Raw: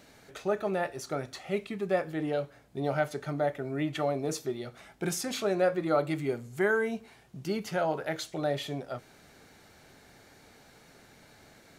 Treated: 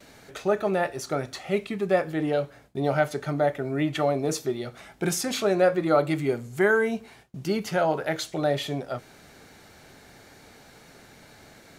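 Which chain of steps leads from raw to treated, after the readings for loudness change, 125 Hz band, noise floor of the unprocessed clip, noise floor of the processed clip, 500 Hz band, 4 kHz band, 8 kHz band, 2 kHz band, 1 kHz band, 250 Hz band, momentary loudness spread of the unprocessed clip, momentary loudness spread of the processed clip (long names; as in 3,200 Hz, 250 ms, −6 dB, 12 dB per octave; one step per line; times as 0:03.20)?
+5.5 dB, +5.5 dB, −58 dBFS, −52 dBFS, +5.5 dB, +5.5 dB, +5.5 dB, +5.5 dB, +5.5 dB, +5.5 dB, 11 LU, 11 LU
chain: noise gate with hold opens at −47 dBFS
level +5.5 dB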